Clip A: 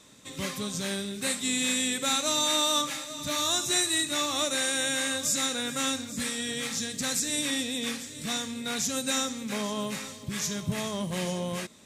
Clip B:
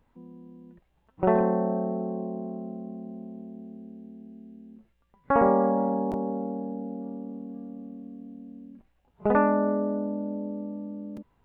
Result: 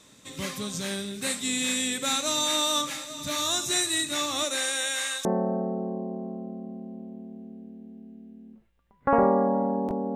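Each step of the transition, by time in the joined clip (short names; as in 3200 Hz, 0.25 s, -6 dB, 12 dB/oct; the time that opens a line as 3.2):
clip A
4.43–5.25 HPF 250 Hz -> 1100 Hz
5.25 switch to clip B from 1.48 s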